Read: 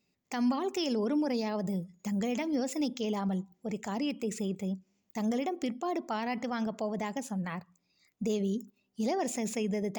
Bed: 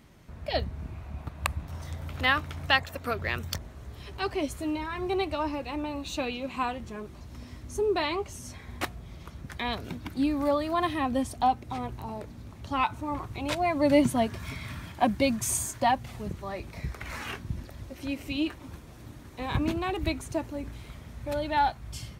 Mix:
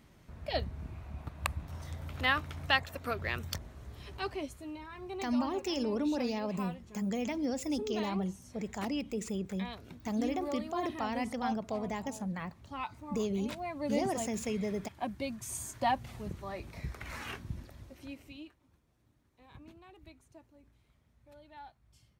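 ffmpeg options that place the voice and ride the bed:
-filter_complex "[0:a]adelay=4900,volume=-2.5dB[a];[1:a]volume=3dB,afade=t=out:st=4.13:d=0.45:silence=0.398107,afade=t=in:st=15.49:d=0.42:silence=0.421697,afade=t=out:st=17.38:d=1.16:silence=0.0944061[b];[a][b]amix=inputs=2:normalize=0"

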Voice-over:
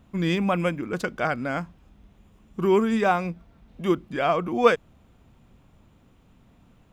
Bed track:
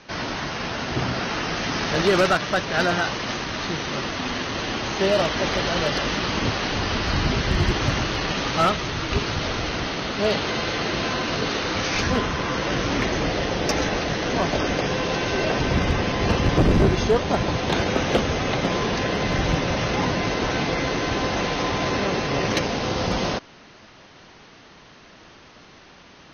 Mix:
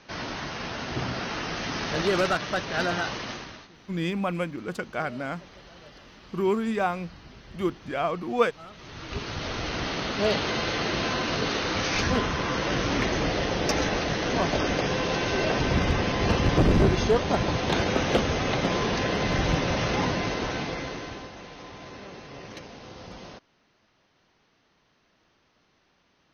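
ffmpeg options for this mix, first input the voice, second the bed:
-filter_complex "[0:a]adelay=3750,volume=-4.5dB[a];[1:a]volume=18dB,afade=t=out:st=3.17:d=0.51:silence=0.0944061,afade=t=in:st=8.69:d=1.27:silence=0.0668344,afade=t=out:st=19.95:d=1.37:silence=0.149624[b];[a][b]amix=inputs=2:normalize=0"

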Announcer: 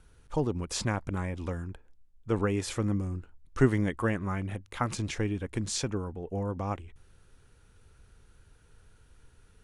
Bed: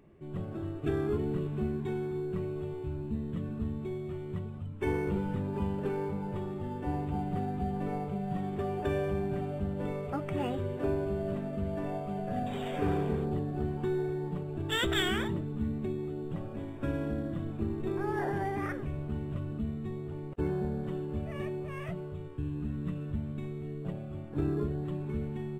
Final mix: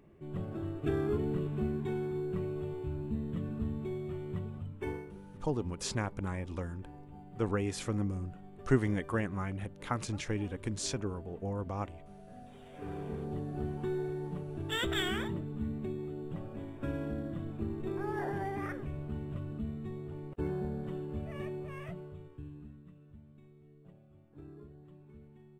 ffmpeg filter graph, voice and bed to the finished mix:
-filter_complex "[0:a]adelay=5100,volume=-4dB[a];[1:a]volume=13dB,afade=t=out:st=4.59:d=0.5:silence=0.149624,afade=t=in:st=12.69:d=0.89:silence=0.199526,afade=t=out:st=21.64:d=1.21:silence=0.149624[b];[a][b]amix=inputs=2:normalize=0"

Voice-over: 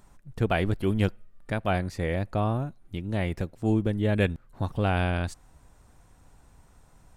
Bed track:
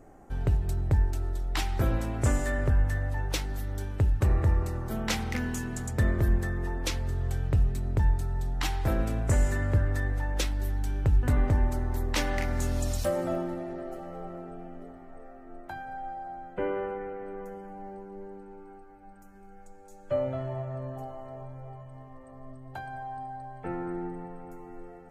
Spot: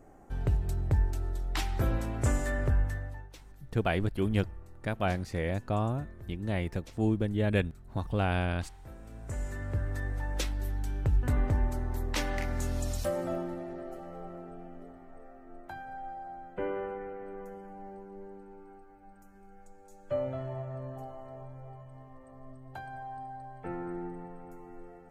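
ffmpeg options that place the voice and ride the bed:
-filter_complex "[0:a]adelay=3350,volume=-3.5dB[a];[1:a]volume=15.5dB,afade=t=out:st=2.73:d=0.58:silence=0.112202,afade=t=in:st=9.01:d=1.31:silence=0.125893[b];[a][b]amix=inputs=2:normalize=0"

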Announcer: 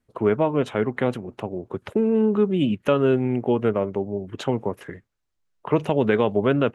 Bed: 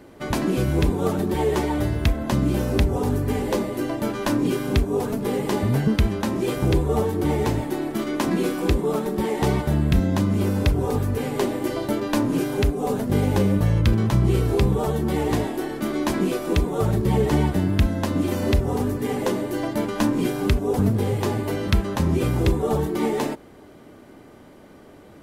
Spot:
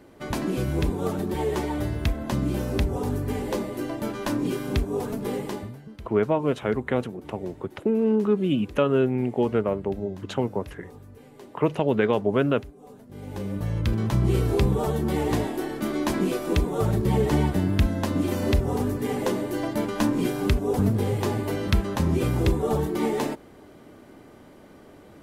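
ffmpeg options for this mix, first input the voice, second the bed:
-filter_complex "[0:a]adelay=5900,volume=-2dB[a];[1:a]volume=16.5dB,afade=t=out:st=5.34:d=0.42:silence=0.11885,afade=t=in:st=13.13:d=1.24:silence=0.0891251[b];[a][b]amix=inputs=2:normalize=0"

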